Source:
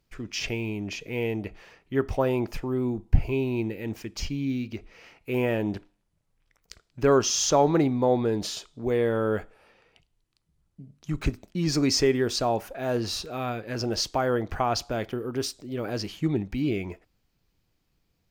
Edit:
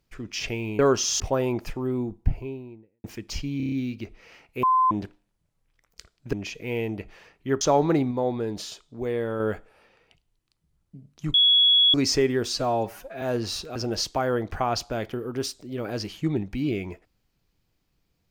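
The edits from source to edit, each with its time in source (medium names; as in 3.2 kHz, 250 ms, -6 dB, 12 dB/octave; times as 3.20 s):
0.79–2.07 s: swap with 7.05–7.46 s
2.68–3.91 s: studio fade out
4.44 s: stutter 0.03 s, 6 plays
5.35–5.63 s: bleep 1.03 kHz -16.5 dBFS
7.96–9.25 s: gain -3.5 dB
11.19–11.79 s: bleep 3.36 kHz -14.5 dBFS
12.33–12.82 s: stretch 1.5×
13.36–13.75 s: delete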